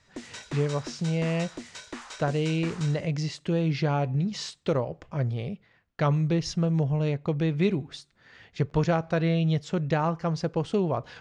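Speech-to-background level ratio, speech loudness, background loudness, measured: 14.0 dB, -27.5 LUFS, -41.5 LUFS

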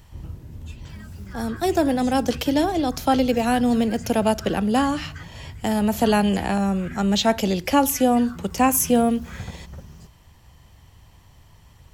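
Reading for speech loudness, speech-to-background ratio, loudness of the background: -21.5 LUFS, 17.5 dB, -39.0 LUFS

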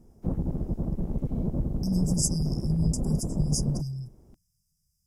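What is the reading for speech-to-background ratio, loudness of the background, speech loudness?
1.5 dB, -31.5 LUFS, -30.0 LUFS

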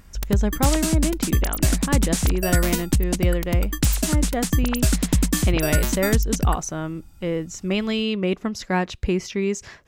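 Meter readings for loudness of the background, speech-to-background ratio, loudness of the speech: -22.5 LUFS, -4.0 dB, -26.5 LUFS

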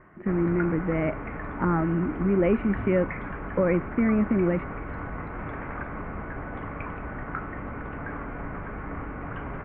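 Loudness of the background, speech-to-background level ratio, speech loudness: -35.5 LUFS, 10.0 dB, -25.5 LUFS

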